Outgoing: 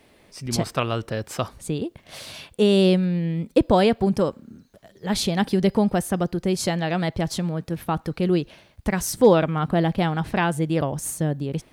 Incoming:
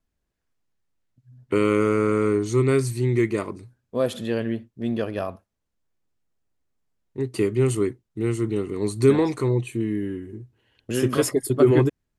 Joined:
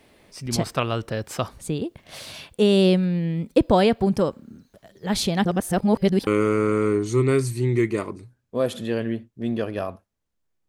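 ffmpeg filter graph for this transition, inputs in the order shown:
ffmpeg -i cue0.wav -i cue1.wav -filter_complex "[0:a]apad=whole_dur=10.68,atrim=end=10.68,asplit=2[link_01][link_02];[link_01]atrim=end=5.452[link_03];[link_02]atrim=start=5.448:end=6.272,asetpts=PTS-STARTPTS,areverse[link_04];[1:a]atrim=start=1.668:end=6.08[link_05];[link_03][link_04]acrossfade=duration=0.004:curve1=hsin:curve2=hsin[link_06];[link_06][link_05]acrossfade=duration=0.004:curve1=hsin:curve2=hsin" out.wav

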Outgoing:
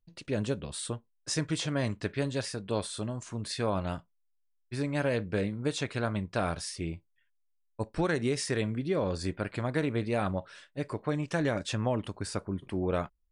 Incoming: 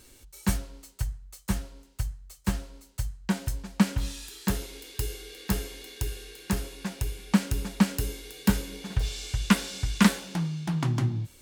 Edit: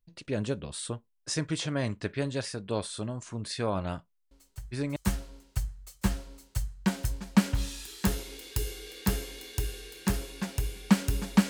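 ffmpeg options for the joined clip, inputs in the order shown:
ffmpeg -i cue0.wav -i cue1.wav -filter_complex "[1:a]asplit=2[link_01][link_02];[0:a]apad=whole_dur=11.49,atrim=end=11.49,atrim=end=4.962[link_03];[link_02]atrim=start=1.388:end=7.92[link_04];[link_01]atrim=start=0.74:end=1.39,asetpts=PTS-STARTPTS,volume=-12dB,afade=type=in:duration=0.004:curve=hsin,afade=type=out:start_time=0.646:duration=0.004:curve=hsin,adelay=4310[link_05];[link_03][link_04]acrossfade=duration=0.004:curve1=hsin:curve2=hsin[link_06];[link_06][link_05]amix=inputs=2:normalize=0" out.wav

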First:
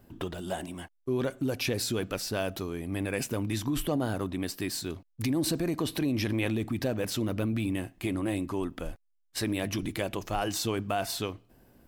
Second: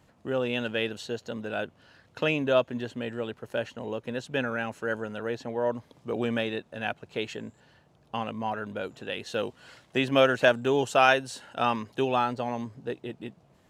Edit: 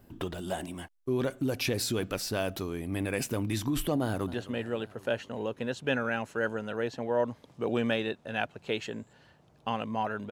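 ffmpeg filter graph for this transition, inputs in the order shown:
ffmpeg -i cue0.wav -i cue1.wav -filter_complex "[0:a]apad=whole_dur=10.31,atrim=end=10.31,atrim=end=4.342[link_01];[1:a]atrim=start=2.808:end=8.78[link_02];[link_01][link_02]acrossfade=duration=0.004:curve1=hsin:curve2=hsin,asplit=2[link_03][link_04];[link_04]afade=type=in:start_time=4.01:duration=0.01,afade=type=out:start_time=4.34:duration=0.01,aecho=0:1:260|520|780|1040|1300|1560|1820:0.158489|0.103018|0.0669617|0.0435251|0.0282913|0.0183894|0.0119531[link_05];[link_03][link_05]amix=inputs=2:normalize=0" out.wav

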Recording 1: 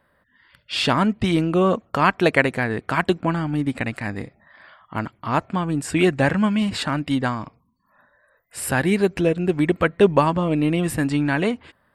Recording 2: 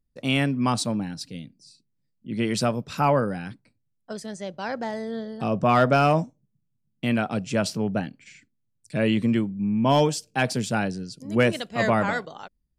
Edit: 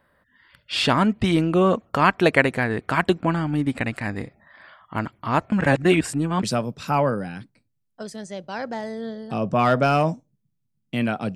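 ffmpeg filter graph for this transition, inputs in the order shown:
ffmpeg -i cue0.wav -i cue1.wav -filter_complex "[0:a]apad=whole_dur=11.35,atrim=end=11.35,asplit=2[link_01][link_02];[link_01]atrim=end=5.522[link_03];[link_02]atrim=start=5.518:end=6.432,asetpts=PTS-STARTPTS,areverse[link_04];[1:a]atrim=start=2.528:end=7.45[link_05];[link_03][link_04]acrossfade=duration=0.004:curve1=hsin:curve2=hsin[link_06];[link_06][link_05]acrossfade=duration=0.004:curve1=hsin:curve2=hsin" out.wav

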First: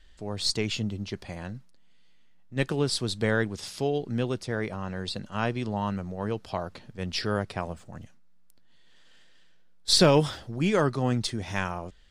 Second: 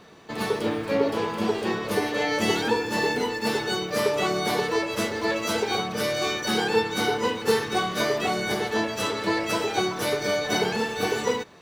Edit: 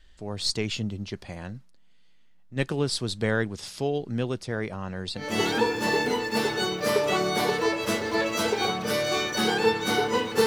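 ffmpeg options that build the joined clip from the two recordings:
ffmpeg -i cue0.wav -i cue1.wav -filter_complex "[0:a]apad=whole_dur=10.46,atrim=end=10.46,atrim=end=5.46,asetpts=PTS-STARTPTS[link_01];[1:a]atrim=start=2.24:end=7.56,asetpts=PTS-STARTPTS[link_02];[link_01][link_02]acrossfade=duration=0.32:curve1=tri:curve2=tri" out.wav

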